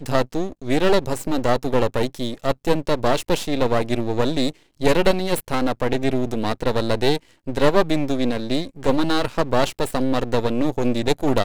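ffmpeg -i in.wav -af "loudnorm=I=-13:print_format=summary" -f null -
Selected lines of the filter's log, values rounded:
Input Integrated:    -22.1 LUFS
Input True Peak:      -1.3 dBTP
Input LRA:             0.6 LU
Input Threshold:     -32.1 LUFS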